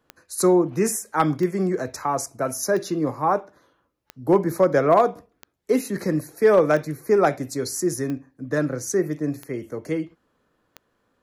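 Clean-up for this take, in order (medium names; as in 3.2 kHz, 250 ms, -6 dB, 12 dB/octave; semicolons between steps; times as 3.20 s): clip repair -8 dBFS; de-click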